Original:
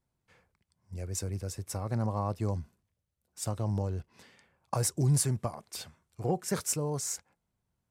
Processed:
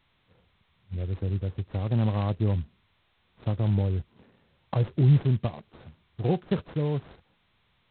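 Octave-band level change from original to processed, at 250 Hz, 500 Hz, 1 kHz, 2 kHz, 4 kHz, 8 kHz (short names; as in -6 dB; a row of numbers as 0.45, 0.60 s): +6.5 dB, +3.0 dB, -1.0 dB, +2.0 dB, n/a, under -40 dB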